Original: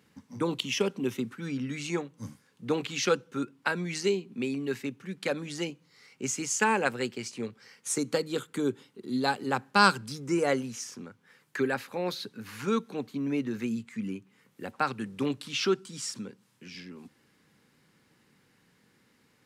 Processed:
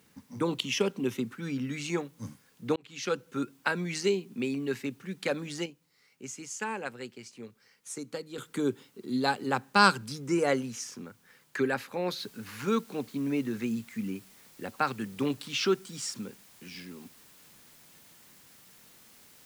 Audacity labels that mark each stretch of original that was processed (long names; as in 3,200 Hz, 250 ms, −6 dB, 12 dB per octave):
2.760000	3.380000	fade in
5.350000	8.690000	duck −9.5 dB, fades 0.31 s logarithmic
12.180000	12.180000	noise floor change −68 dB −57 dB